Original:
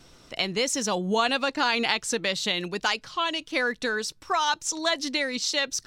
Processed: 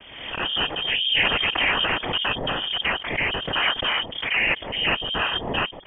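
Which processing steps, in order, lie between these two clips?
cochlear-implant simulation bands 8
voice inversion scrambler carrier 3,400 Hz
transient designer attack −3 dB, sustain +2 dB
background raised ahead of every attack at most 56 dB per second
level +4 dB

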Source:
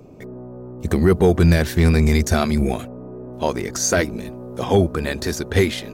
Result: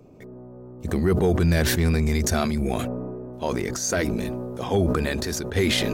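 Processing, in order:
level that may fall only so fast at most 21 dB per second
level −6.5 dB

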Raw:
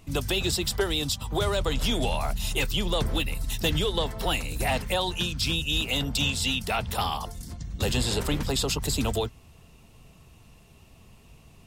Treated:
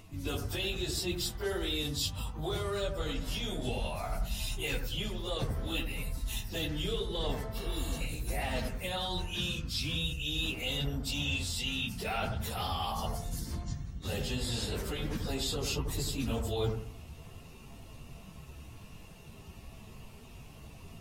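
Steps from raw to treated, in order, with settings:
reversed playback
downward compressor 8 to 1, threshold −34 dBFS, peak gain reduction 13.5 dB
reversed playback
time stretch by phase vocoder 1.8×
dynamic equaliser 970 Hz, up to −5 dB, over −58 dBFS, Q 2.6
on a send: bucket-brigade delay 90 ms, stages 1,024, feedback 33%, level −6 dB
on the sum: healed spectral selection 0:07.62–0:07.98, 500–3,400 Hz before
parametric band 8,000 Hz −3 dB 0.28 octaves
level +5.5 dB

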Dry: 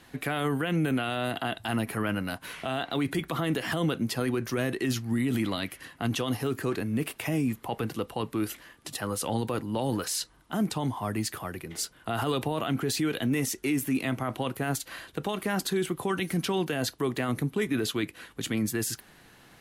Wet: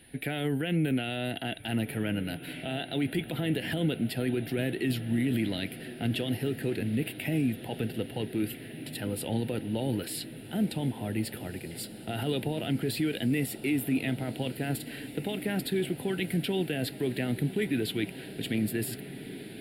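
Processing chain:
phaser with its sweep stopped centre 2,700 Hz, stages 4
feedback delay with all-pass diffusion 1,627 ms, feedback 68%, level −14 dB
steady tone 9,900 Hz −59 dBFS

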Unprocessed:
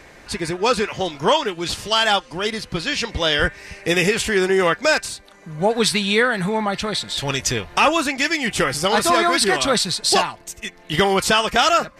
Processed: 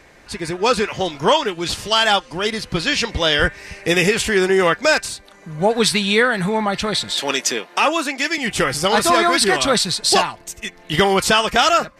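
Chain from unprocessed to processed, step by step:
0:07.11–0:08.38: high-pass filter 240 Hz 24 dB per octave
automatic gain control
level −3.5 dB

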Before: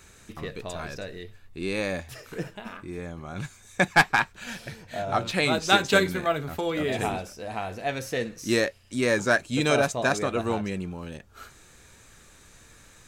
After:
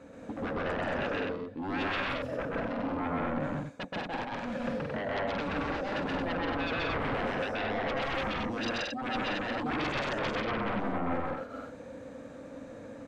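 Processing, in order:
reversed playback
downward compressor 12 to 1, threshold −33 dBFS, peak gain reduction 20 dB
reversed playback
pair of resonant band-passes 380 Hz, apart 0.91 octaves
sine wavefolder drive 17 dB, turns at −31 dBFS
loudspeakers that aren't time-aligned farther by 44 metres 0 dB, 60 metres −4 dB, 77 metres −3 dB
level −2 dB

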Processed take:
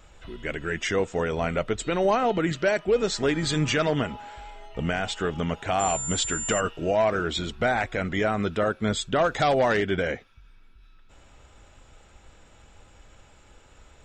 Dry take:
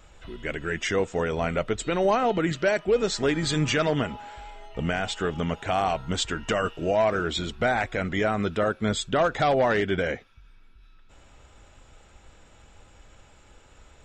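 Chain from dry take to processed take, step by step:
0:05.79–0:06.59: steady tone 7,200 Hz −29 dBFS
0:09.28–0:09.77: high-shelf EQ 5,600 Hz +10 dB

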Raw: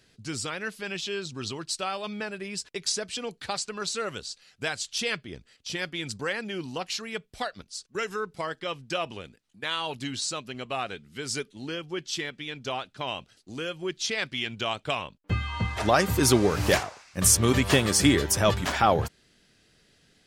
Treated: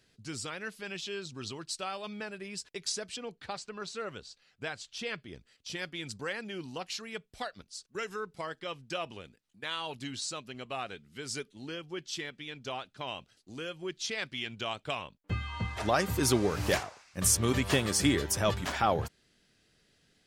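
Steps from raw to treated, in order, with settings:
0:03.16–0:05.18: low-pass filter 2,800 Hz 6 dB per octave
level −6 dB

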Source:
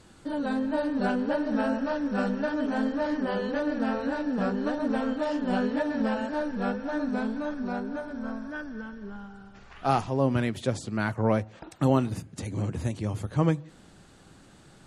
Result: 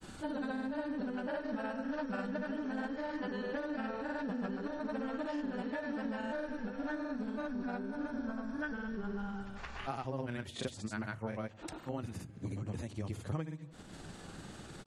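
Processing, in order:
dynamic equaliser 1,900 Hz, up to +4 dB, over −42 dBFS, Q 1
downward compressor 10 to 1, threshold −40 dBFS, peak gain reduction 23 dB
granular cloud, pitch spread up and down by 0 semitones
level +6 dB

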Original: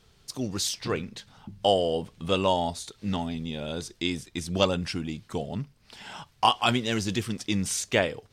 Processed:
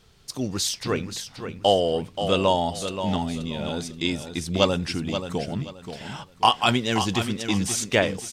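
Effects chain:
repeating echo 529 ms, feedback 27%, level −9 dB
level +3 dB

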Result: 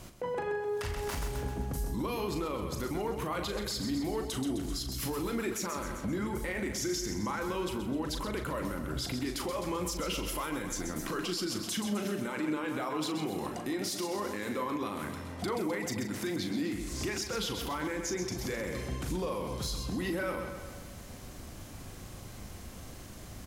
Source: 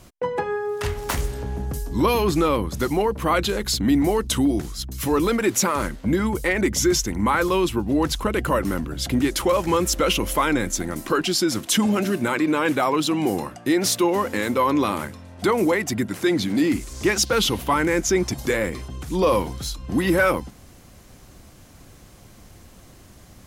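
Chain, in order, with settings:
downward compressor 5 to 1, threshold −31 dBFS, peak gain reduction 14.5 dB
on a send: repeating echo 129 ms, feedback 54%, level −9 dB
on the sum: dynamic equaliser 4,900 Hz, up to +4 dB, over −52 dBFS, Q 4.6
brickwall limiter −26 dBFS, peak gain reduction 8 dB
double-tracking delay 39 ms −7.5 dB

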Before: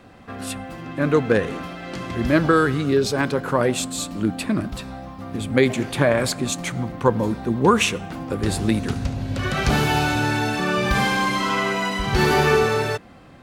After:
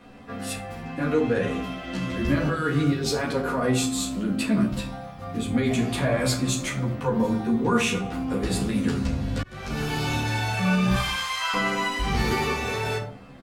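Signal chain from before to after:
0:10.94–0:11.54: high-pass filter 830 Hz 24 dB per octave
brickwall limiter −14 dBFS, peak gain reduction 10.5 dB
rectangular room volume 430 cubic metres, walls furnished, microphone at 1.8 metres
0:09.42–0:10.11: fade in
barber-pole flanger 11.7 ms +0.45 Hz

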